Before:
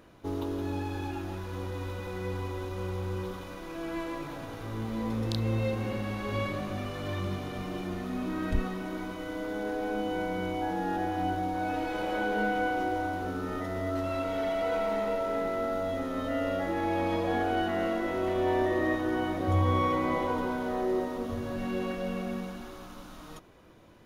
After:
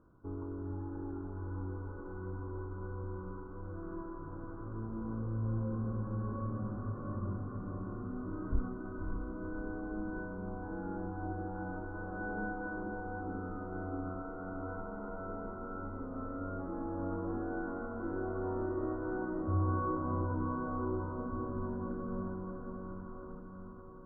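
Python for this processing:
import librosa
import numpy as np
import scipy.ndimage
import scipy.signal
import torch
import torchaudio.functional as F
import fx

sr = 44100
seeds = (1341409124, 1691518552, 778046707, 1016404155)

y = scipy.signal.sosfilt(scipy.signal.cheby1(6, 6, 1500.0, 'lowpass', fs=sr, output='sos'), x)
y = fx.peak_eq(y, sr, hz=570.0, db=-14.5, octaves=3.0)
y = fx.echo_diffused(y, sr, ms=571, feedback_pct=60, wet_db=-4.5)
y = y * librosa.db_to_amplitude(3.5)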